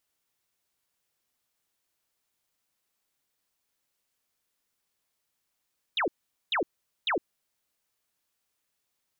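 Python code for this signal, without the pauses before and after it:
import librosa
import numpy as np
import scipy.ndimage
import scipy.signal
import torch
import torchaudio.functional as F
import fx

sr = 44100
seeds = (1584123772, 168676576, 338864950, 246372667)

y = fx.laser_zaps(sr, level_db=-24, start_hz=4000.0, end_hz=280.0, length_s=0.11, wave='sine', shots=3, gap_s=0.44)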